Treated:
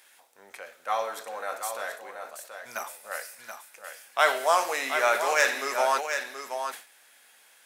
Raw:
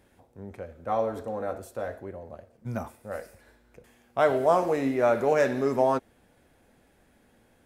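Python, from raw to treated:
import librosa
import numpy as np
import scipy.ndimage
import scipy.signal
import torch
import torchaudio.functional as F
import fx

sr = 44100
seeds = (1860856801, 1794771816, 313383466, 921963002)

y = scipy.signal.sosfilt(scipy.signal.butter(2, 1100.0, 'highpass', fs=sr, output='sos'), x)
y = fx.high_shelf(y, sr, hz=2100.0, db=9.5)
y = y + 10.0 ** (-7.5 / 20.0) * np.pad(y, (int(728 * sr / 1000.0), 0))[:len(y)]
y = fx.sustainer(y, sr, db_per_s=140.0)
y = y * 10.0 ** (5.5 / 20.0)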